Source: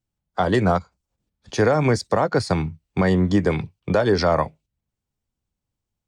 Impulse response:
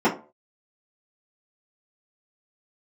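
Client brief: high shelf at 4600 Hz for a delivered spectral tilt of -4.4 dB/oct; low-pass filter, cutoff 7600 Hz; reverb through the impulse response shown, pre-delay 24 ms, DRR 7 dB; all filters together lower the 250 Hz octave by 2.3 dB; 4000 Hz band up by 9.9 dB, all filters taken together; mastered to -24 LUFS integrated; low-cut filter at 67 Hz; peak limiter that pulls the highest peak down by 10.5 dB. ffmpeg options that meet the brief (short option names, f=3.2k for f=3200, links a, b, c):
-filter_complex "[0:a]highpass=67,lowpass=7.6k,equalizer=f=250:t=o:g=-3.5,equalizer=f=4k:t=o:g=8,highshelf=f=4.6k:g=8.5,alimiter=limit=-14dB:level=0:latency=1,asplit=2[a][b];[1:a]atrim=start_sample=2205,adelay=24[c];[b][c]afir=irnorm=-1:irlink=0,volume=-25.5dB[d];[a][d]amix=inputs=2:normalize=0,volume=-0.5dB"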